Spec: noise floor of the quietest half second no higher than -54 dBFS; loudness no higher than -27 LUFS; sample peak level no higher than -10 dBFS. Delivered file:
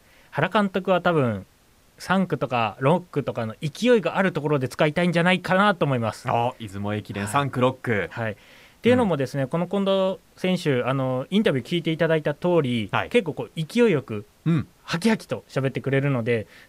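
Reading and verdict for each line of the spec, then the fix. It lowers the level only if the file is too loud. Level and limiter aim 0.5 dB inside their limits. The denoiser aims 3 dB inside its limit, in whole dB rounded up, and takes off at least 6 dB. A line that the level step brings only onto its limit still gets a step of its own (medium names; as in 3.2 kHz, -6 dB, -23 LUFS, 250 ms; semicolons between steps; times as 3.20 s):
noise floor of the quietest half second -57 dBFS: pass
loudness -23.5 LUFS: fail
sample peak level -6.5 dBFS: fail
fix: trim -4 dB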